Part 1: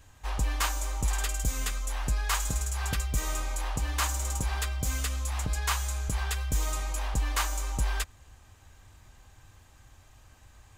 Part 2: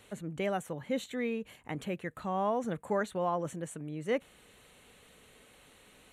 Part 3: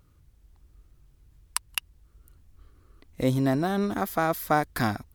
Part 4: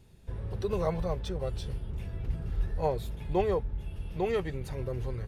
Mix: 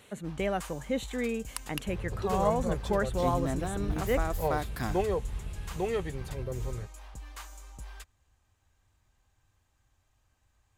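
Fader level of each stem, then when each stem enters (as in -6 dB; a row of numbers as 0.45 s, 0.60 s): -16.0 dB, +2.0 dB, -9.0 dB, -1.5 dB; 0.00 s, 0.00 s, 0.00 s, 1.60 s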